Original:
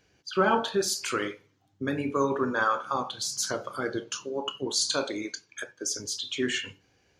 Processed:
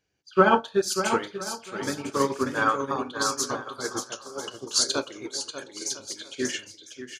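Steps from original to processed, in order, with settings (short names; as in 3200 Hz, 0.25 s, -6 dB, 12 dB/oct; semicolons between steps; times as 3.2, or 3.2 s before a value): bell 8600 Hz +2.5 dB 1.9 oct; bouncing-ball echo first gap 0.59 s, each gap 0.7×, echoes 5; upward expander 2.5:1, over -33 dBFS; gain +7.5 dB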